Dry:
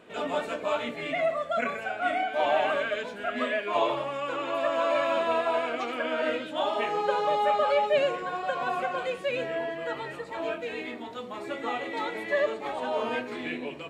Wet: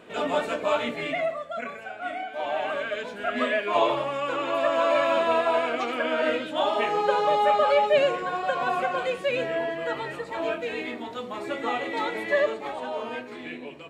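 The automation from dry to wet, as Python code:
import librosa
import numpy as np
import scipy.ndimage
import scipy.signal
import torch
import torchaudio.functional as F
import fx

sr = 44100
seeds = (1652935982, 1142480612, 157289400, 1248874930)

y = fx.gain(x, sr, db=fx.line((1.01, 4.0), (1.47, -5.0), (2.43, -5.0), (3.34, 3.5), (12.35, 3.5), (13.04, -3.5)))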